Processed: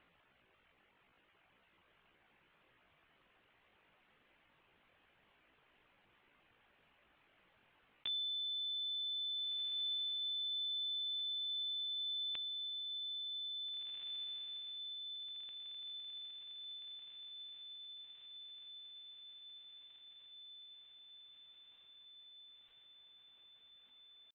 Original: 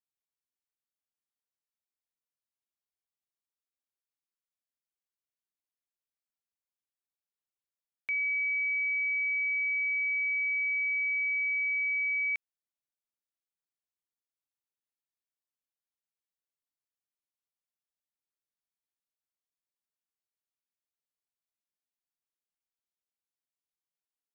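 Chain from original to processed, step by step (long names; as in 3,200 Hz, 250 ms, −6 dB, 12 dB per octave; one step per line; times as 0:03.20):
Butterworth low-pass 2,000 Hz 48 dB per octave
reverb reduction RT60 1.1 s
pitch shifter +7.5 semitones
feedback delay with all-pass diffusion 1,805 ms, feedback 49%, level −6 dB
envelope flattener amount 50%
level +1.5 dB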